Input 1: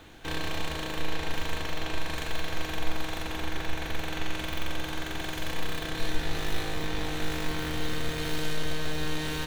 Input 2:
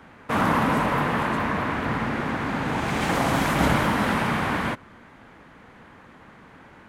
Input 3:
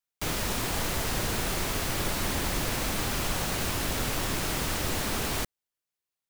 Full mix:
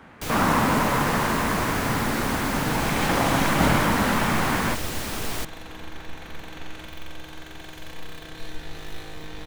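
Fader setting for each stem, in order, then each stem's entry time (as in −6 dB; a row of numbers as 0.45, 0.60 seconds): −6.5, +0.5, −1.0 decibels; 2.40, 0.00, 0.00 seconds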